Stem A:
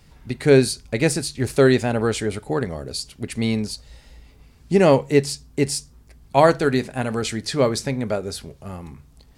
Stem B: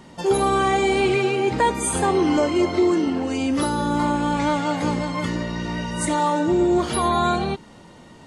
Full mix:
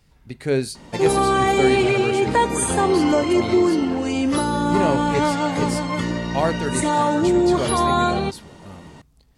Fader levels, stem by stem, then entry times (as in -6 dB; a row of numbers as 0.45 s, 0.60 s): -7.0 dB, +1.5 dB; 0.00 s, 0.75 s